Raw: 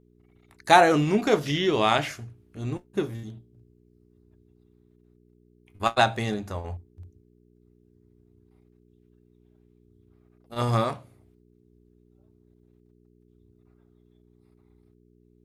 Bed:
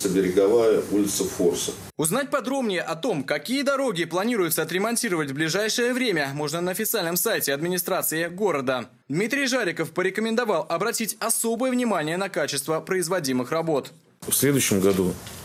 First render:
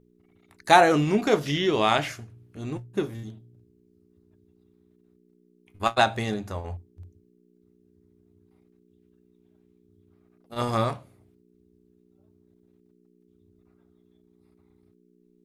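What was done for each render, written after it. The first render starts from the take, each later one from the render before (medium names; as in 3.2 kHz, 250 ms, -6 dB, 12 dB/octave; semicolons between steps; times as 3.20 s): de-hum 60 Hz, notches 2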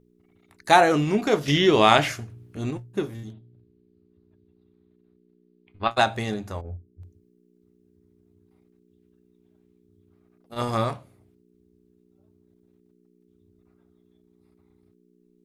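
1.48–2.71 s: gain +5.5 dB; 3.33–5.91 s: steep low-pass 4.7 kHz 72 dB/octave; 6.61–7.02 s: boxcar filter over 46 samples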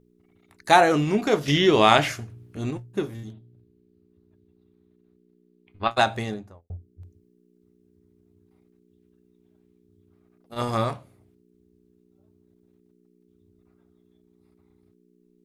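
6.13–6.70 s: studio fade out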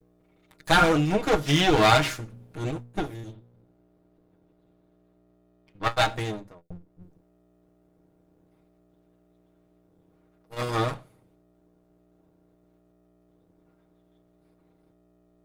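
comb filter that takes the minimum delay 6.4 ms; small resonant body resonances 1.4/3.6 kHz, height 7 dB, ringing for 85 ms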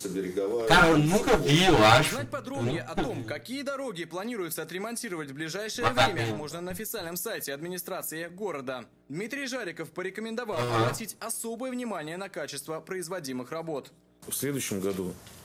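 add bed -10.5 dB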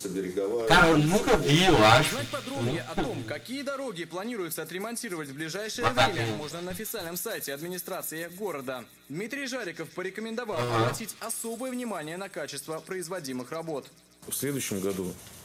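feedback echo behind a high-pass 144 ms, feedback 80%, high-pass 2.8 kHz, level -13.5 dB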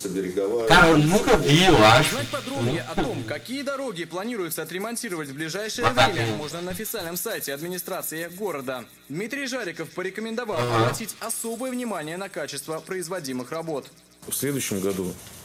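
trim +4.5 dB; peak limiter -2 dBFS, peak gain reduction 2.5 dB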